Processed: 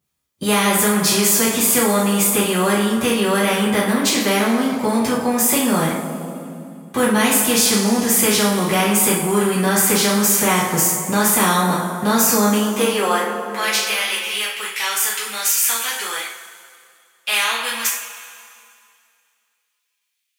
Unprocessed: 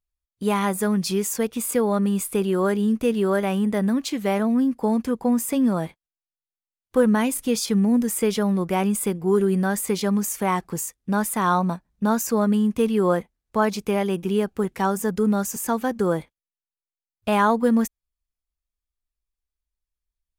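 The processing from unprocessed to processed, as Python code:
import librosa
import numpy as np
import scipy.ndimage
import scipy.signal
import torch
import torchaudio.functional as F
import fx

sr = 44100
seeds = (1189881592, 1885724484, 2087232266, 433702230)

y = fx.filter_sweep_highpass(x, sr, from_hz=150.0, to_hz=2500.0, start_s=12.3, end_s=13.72, q=2.4)
y = fx.rev_double_slope(y, sr, seeds[0], early_s=0.43, late_s=2.3, knee_db=-18, drr_db=-8.0)
y = fx.spectral_comp(y, sr, ratio=2.0)
y = F.gain(torch.from_numpy(y), -5.5).numpy()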